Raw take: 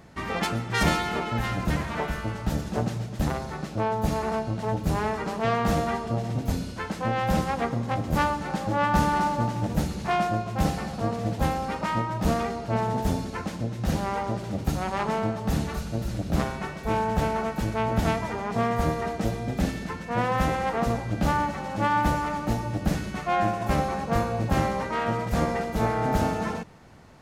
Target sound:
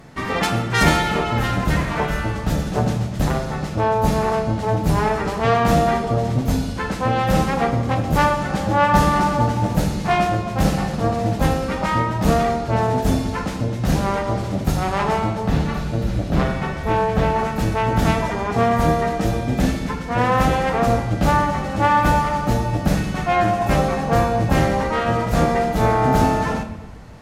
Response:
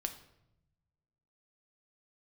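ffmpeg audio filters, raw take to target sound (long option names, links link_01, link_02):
-filter_complex "[0:a]asettb=1/sr,asplit=3[link_01][link_02][link_03];[link_01]atrim=end=15.474[link_04];[link_02]atrim=start=15.47:end=17.39,asetpts=PTS-STARTPTS,afade=type=in:duration=0.004:curve=qsin,afade=type=out:start_time=1.916:duration=0.004:curve=qsin,acrossover=split=4500[link_05][link_06];[link_06]acompressor=threshold=-56dB:ratio=4:attack=1:release=60[link_07];[link_05][link_07]amix=inputs=2:normalize=0[link_08];[link_03]atrim=start=17.386[link_09];[link_04][link_08]acrossfade=duration=0.004:curve1=hsin:curve2=qsin[link_10];[link_10][link_09]acrossfade=duration=0.004:curve1=qsin:curve2=hsin[link_11];[1:a]atrim=start_sample=2205,asetrate=31752,aresample=44100[link_12];[link_11][link_12]afir=irnorm=-1:irlink=0,volume=5.5dB"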